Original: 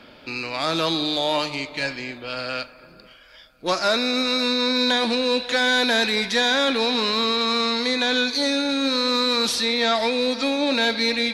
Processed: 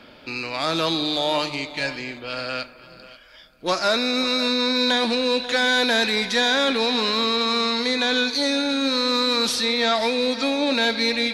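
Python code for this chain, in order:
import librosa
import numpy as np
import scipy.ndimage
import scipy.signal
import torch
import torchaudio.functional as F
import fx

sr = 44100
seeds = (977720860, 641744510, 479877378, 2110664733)

y = x + 10.0 ** (-18.0 / 20.0) * np.pad(x, (int(535 * sr / 1000.0), 0))[:len(x)]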